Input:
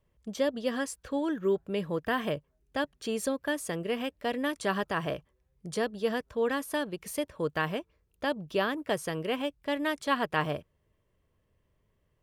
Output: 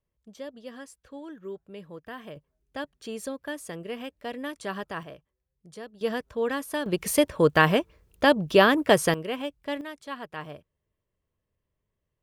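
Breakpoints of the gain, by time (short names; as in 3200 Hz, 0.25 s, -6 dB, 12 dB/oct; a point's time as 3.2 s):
-11 dB
from 2.36 s -4 dB
from 5.03 s -11 dB
from 6.01 s +1 dB
from 6.86 s +11 dB
from 9.14 s -0.5 dB
from 9.81 s -9 dB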